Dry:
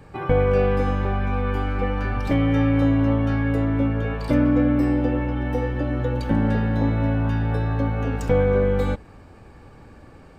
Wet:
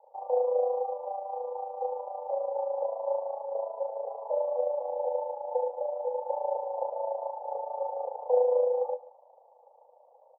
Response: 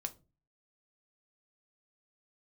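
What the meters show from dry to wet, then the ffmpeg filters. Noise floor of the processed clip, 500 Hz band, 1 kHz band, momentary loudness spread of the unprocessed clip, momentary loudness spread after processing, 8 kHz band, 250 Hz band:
-60 dBFS, -3.0 dB, -3.0 dB, 6 LU, 9 LU, no reading, under -40 dB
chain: -filter_complex "[0:a]dynaudnorm=f=580:g=7:m=1.58,tremolo=f=27:d=0.667,asuperpass=centerf=690:order=12:qfactor=1.5,asplit=2[s0][s1];[s1]adelay=22,volume=0.211[s2];[s0][s2]amix=inputs=2:normalize=0,aecho=1:1:138:0.133"

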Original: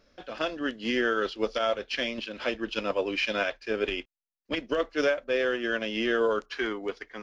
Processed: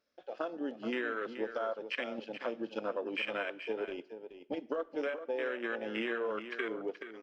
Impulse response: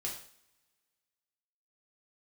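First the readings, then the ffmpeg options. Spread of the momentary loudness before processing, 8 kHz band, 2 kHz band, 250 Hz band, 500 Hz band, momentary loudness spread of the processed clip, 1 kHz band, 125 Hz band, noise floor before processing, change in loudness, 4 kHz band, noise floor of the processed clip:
7 LU, no reading, -8.5 dB, -7.0 dB, -7.5 dB, 6 LU, -7.5 dB, under -10 dB, under -85 dBFS, -8.0 dB, -12.5 dB, -62 dBFS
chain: -filter_complex "[0:a]afwtdn=0.0316,highpass=f=350:p=1,acompressor=threshold=0.0224:ratio=6,aecho=1:1:427:0.299,asplit=2[s0][s1];[1:a]atrim=start_sample=2205,asetrate=26460,aresample=44100[s2];[s1][s2]afir=irnorm=-1:irlink=0,volume=0.0794[s3];[s0][s3]amix=inputs=2:normalize=0"

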